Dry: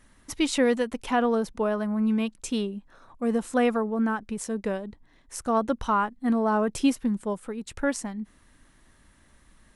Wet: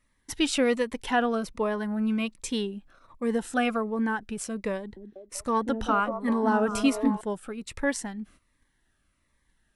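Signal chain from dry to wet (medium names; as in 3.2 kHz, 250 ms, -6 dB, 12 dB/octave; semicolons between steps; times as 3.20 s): peaking EQ 220 Hz -2.5 dB 0.82 oct; gate -51 dBFS, range -13 dB; peaking EQ 2 kHz +5 dB 1.9 oct; band-stop 6.6 kHz, Q 24; 4.77–7.21 s: repeats whose band climbs or falls 193 ms, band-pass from 290 Hz, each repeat 0.7 oct, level -2 dB; Shepard-style phaser falling 1.3 Hz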